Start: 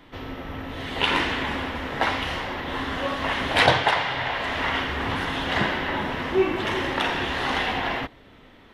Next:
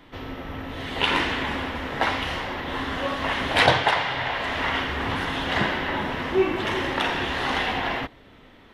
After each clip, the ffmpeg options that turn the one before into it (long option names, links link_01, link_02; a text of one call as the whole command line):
ffmpeg -i in.wav -af anull out.wav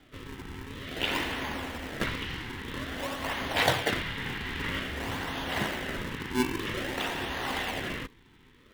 ffmpeg -i in.wav -filter_complex "[0:a]lowpass=5600,acrossover=split=140|1200|4200[link_01][link_02][link_03][link_04];[link_02]acrusher=samples=39:mix=1:aa=0.000001:lfo=1:lforange=62.4:lforate=0.51[link_05];[link_01][link_05][link_03][link_04]amix=inputs=4:normalize=0,volume=-6.5dB" out.wav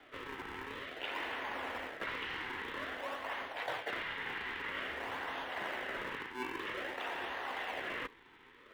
ffmpeg -i in.wav -filter_complex "[0:a]acrossover=split=390 2800:gain=0.112 1 0.224[link_01][link_02][link_03];[link_01][link_02][link_03]amix=inputs=3:normalize=0,areverse,acompressor=threshold=-42dB:ratio=6,areverse,volume=4.5dB" out.wav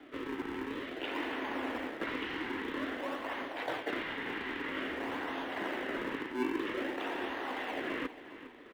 ffmpeg -i in.wav -af "equalizer=frequency=290:width_type=o:width=1:gain=14.5,aecho=1:1:405|810|1215|1620:0.188|0.0735|0.0287|0.0112" out.wav